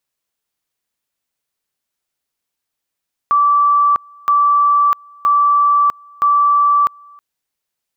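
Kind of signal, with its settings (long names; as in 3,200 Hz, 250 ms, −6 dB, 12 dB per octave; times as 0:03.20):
tone at two levels in turn 1,160 Hz −9 dBFS, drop 29.5 dB, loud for 0.65 s, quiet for 0.32 s, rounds 4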